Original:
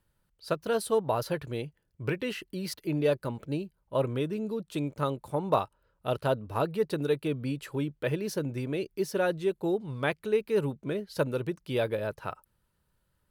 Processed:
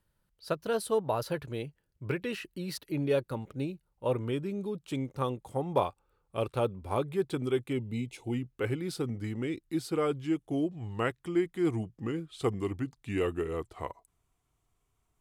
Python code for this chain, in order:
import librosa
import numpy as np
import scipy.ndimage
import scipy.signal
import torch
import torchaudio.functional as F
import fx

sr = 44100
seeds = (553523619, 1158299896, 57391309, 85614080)

y = fx.speed_glide(x, sr, from_pct=101, to_pct=74)
y = fx.spec_box(y, sr, start_s=7.77, length_s=0.56, low_hz=960.0, high_hz=2000.0, gain_db=-16)
y = y * 10.0 ** (-2.0 / 20.0)